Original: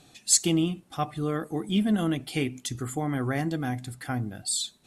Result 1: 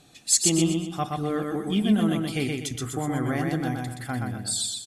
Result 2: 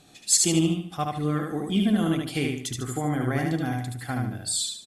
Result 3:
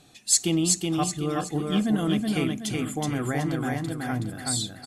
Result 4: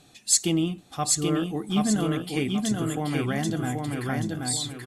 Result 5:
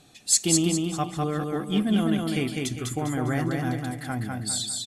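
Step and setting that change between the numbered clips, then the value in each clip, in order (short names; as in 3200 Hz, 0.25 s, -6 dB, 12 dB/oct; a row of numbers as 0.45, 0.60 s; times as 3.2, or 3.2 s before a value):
feedback echo, time: 124, 74, 373, 781, 201 ms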